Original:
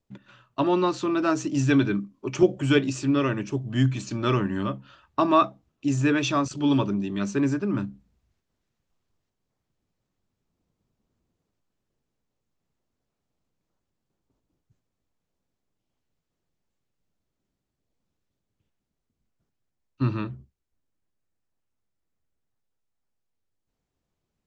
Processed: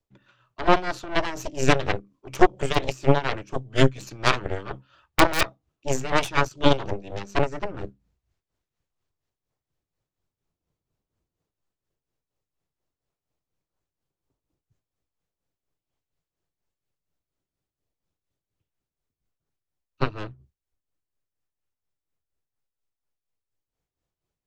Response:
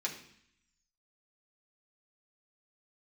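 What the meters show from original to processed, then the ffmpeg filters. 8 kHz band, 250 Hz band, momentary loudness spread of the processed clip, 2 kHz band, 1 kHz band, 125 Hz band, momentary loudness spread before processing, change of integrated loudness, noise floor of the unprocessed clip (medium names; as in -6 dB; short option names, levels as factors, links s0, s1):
+2.5 dB, -5.5 dB, 13 LU, +5.0 dB, +3.0 dB, -2.0 dB, 10 LU, 0.0 dB, -82 dBFS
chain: -filter_complex "[0:a]acrossover=split=180|690|4000[s0][s1][s2][s3];[s2]aeval=exprs='(mod(5.62*val(0)+1,2)-1)/5.62':c=same[s4];[s0][s1][s4][s3]amix=inputs=4:normalize=0,tremolo=f=4.2:d=0.66,aeval=exprs='0.316*(cos(1*acos(clip(val(0)/0.316,-1,1)))-cos(1*PI/2))+0.141*(cos(4*acos(clip(val(0)/0.316,-1,1)))-cos(4*PI/2))+0.0708*(cos(7*acos(clip(val(0)/0.316,-1,1)))-cos(7*PI/2))':c=same,equalizer=f=220:t=o:w=0.52:g=-8.5,volume=1.5"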